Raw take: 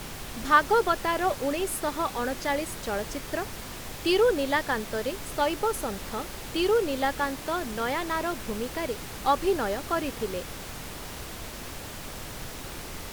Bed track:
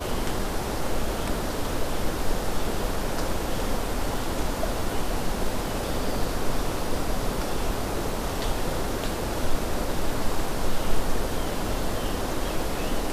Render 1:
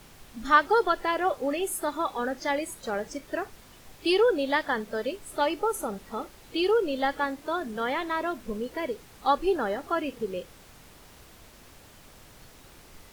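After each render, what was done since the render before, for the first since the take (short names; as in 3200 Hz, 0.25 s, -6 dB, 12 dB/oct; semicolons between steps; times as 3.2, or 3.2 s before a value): noise print and reduce 13 dB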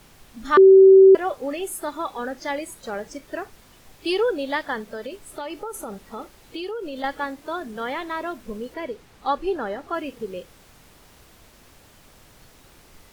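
0.57–1.15 bleep 384 Hz -6.5 dBFS; 4.91–7.04 compressor, threshold -28 dBFS; 8.74–9.94 high shelf 6800 Hz -8.5 dB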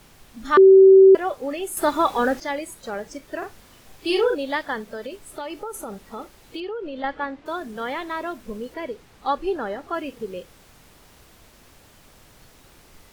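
1.77–2.4 gain +9 dB; 3.38–4.35 doubler 41 ms -4 dB; 6.6–7.46 LPF 3100 Hz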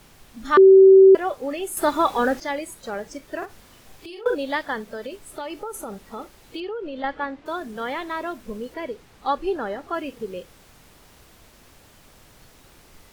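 3.45–4.26 compressor, threshold -37 dBFS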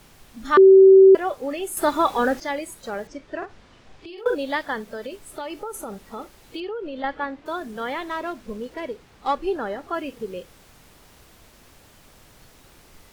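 3.07–4.18 air absorption 120 m; 8.1–9.43 running maximum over 3 samples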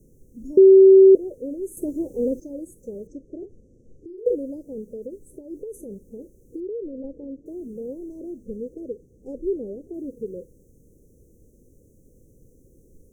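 Chebyshev band-stop 510–6100 Hz, order 5; resonant high shelf 1500 Hz -10.5 dB, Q 3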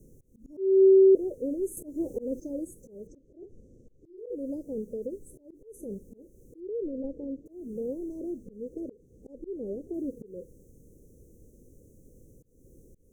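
limiter -13 dBFS, peak gain reduction 7 dB; auto swell 0.273 s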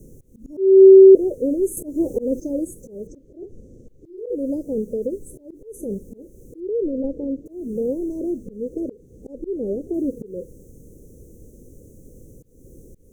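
gain +10 dB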